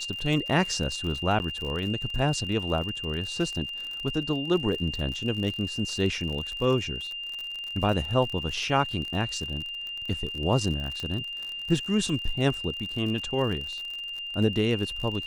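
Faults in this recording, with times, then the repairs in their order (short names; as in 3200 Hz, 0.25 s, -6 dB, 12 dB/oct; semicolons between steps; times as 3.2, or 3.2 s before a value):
crackle 48/s -32 dBFS
tone 2800 Hz -33 dBFS
1.39–1.4 gap 9.7 ms
11 pop -21 dBFS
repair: de-click; notch 2800 Hz, Q 30; interpolate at 1.39, 9.7 ms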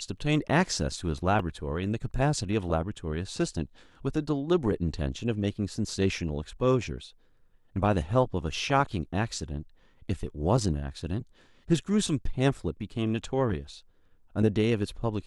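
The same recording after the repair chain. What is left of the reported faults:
none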